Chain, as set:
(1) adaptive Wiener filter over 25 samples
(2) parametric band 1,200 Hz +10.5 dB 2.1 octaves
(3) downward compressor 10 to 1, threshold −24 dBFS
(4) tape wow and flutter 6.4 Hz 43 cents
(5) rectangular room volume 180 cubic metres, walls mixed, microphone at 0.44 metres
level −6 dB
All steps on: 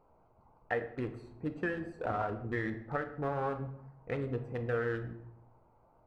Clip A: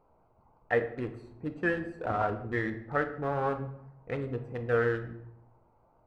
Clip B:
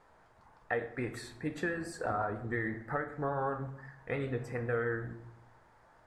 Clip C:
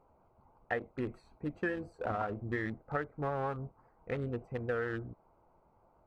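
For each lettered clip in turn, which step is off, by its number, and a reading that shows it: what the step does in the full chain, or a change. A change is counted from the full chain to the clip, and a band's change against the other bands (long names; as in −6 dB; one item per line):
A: 3, average gain reduction 2.5 dB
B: 1, 4 kHz band +3.5 dB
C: 5, echo-to-direct ratio −7.0 dB to none audible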